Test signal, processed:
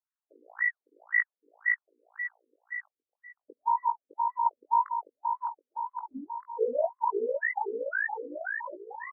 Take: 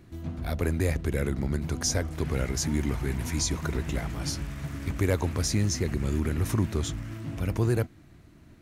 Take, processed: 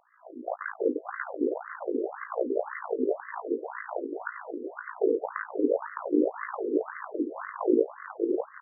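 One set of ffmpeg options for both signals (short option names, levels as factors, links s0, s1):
-filter_complex "[0:a]lowpass=f=2000:w=0.5412,lowpass=f=2000:w=1.3066,tremolo=f=56:d=0.824,asplit=2[s0][s1];[s1]acrusher=bits=3:mix=0:aa=0.000001,volume=0.501[s2];[s0][s2]amix=inputs=2:normalize=0,asplit=2[s3][s4];[s4]adelay=20,volume=0.501[s5];[s3][s5]amix=inputs=2:normalize=0,asplit=2[s6][s7];[s7]aecho=0:1:610|1128|1569|1944|2262:0.631|0.398|0.251|0.158|0.1[s8];[s6][s8]amix=inputs=2:normalize=0,afftfilt=real='re*between(b*sr/1024,350*pow(1500/350,0.5+0.5*sin(2*PI*1.9*pts/sr))/1.41,350*pow(1500/350,0.5+0.5*sin(2*PI*1.9*pts/sr))*1.41)':imag='im*between(b*sr/1024,350*pow(1500/350,0.5+0.5*sin(2*PI*1.9*pts/sr))/1.41,350*pow(1500/350,0.5+0.5*sin(2*PI*1.9*pts/sr))*1.41)':win_size=1024:overlap=0.75,volume=2"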